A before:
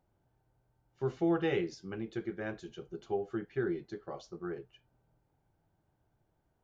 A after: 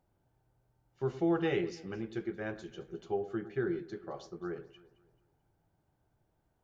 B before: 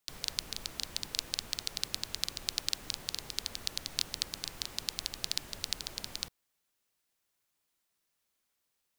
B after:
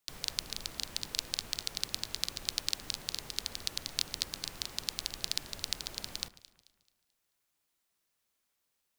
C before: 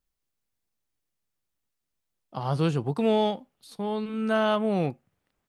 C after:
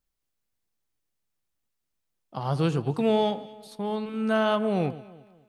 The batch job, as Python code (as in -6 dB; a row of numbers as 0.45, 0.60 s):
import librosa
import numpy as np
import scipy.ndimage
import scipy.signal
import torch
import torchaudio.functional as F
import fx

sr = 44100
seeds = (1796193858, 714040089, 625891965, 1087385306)

y = fx.echo_alternate(x, sr, ms=109, hz=1900.0, feedback_pct=60, wet_db=-14)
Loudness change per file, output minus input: 0.0, 0.0, 0.0 LU